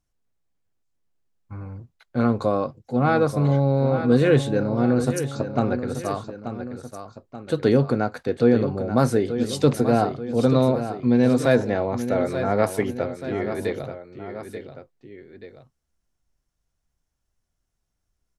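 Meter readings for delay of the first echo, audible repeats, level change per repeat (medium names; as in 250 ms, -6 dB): 883 ms, 2, -5.5 dB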